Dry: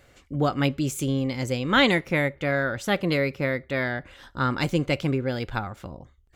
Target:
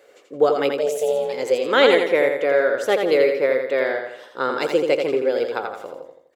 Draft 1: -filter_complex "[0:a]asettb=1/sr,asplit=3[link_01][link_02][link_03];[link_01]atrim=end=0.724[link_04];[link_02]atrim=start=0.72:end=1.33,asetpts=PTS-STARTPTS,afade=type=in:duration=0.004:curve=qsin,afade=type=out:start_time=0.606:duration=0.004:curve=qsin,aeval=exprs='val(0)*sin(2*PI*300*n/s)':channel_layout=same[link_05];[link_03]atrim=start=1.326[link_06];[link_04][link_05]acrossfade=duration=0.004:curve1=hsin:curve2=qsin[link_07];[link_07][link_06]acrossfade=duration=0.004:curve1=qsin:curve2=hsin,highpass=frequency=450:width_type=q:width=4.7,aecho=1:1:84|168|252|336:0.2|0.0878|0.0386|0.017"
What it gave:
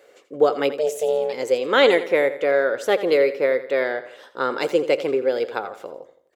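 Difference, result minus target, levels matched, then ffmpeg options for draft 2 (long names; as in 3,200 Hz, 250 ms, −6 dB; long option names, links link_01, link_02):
echo-to-direct −8.5 dB
-filter_complex "[0:a]asettb=1/sr,asplit=3[link_01][link_02][link_03];[link_01]atrim=end=0.724[link_04];[link_02]atrim=start=0.72:end=1.33,asetpts=PTS-STARTPTS,afade=type=in:duration=0.004:curve=qsin,afade=type=out:start_time=0.606:duration=0.004:curve=qsin,aeval=exprs='val(0)*sin(2*PI*300*n/s)':channel_layout=same[link_05];[link_03]atrim=start=1.326[link_06];[link_04][link_05]acrossfade=duration=0.004:curve1=hsin:curve2=qsin[link_07];[link_07][link_06]acrossfade=duration=0.004:curve1=qsin:curve2=hsin,highpass=frequency=450:width_type=q:width=4.7,aecho=1:1:84|168|252|336|420:0.531|0.234|0.103|0.0452|0.0199"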